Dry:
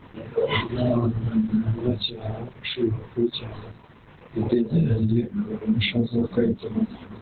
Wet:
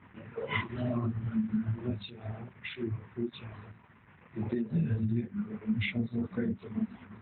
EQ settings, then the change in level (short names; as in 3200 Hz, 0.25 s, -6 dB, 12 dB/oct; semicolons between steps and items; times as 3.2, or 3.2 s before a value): speaker cabinet 120–2300 Hz, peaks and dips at 140 Hz -6 dB, 310 Hz -4 dB, 480 Hz -3 dB; bell 520 Hz -12.5 dB 2.8 oct; 0.0 dB